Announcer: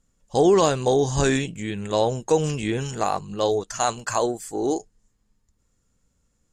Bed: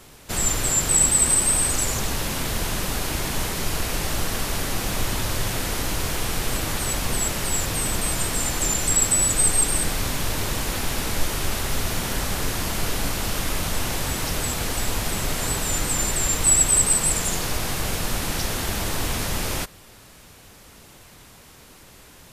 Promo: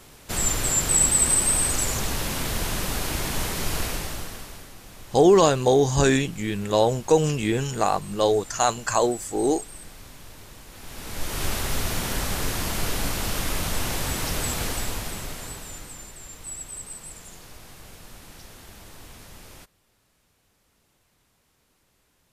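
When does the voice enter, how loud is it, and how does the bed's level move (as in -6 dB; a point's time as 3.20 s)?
4.80 s, +1.5 dB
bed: 3.84 s -1.5 dB
4.75 s -19.5 dB
10.69 s -19.5 dB
11.43 s -1.5 dB
14.65 s -1.5 dB
16.13 s -19.5 dB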